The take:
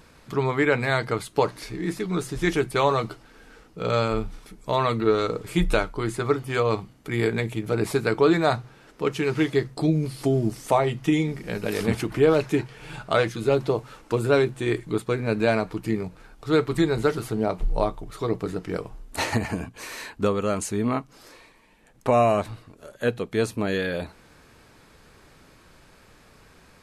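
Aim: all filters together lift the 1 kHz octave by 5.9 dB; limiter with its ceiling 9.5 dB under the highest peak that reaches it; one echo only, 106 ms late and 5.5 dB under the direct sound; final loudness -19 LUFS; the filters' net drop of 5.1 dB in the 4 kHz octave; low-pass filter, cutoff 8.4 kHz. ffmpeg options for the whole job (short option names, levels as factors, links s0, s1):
-af "lowpass=8400,equalizer=f=1000:t=o:g=8,equalizer=f=4000:t=o:g=-6.5,alimiter=limit=0.237:level=0:latency=1,aecho=1:1:106:0.531,volume=1.88"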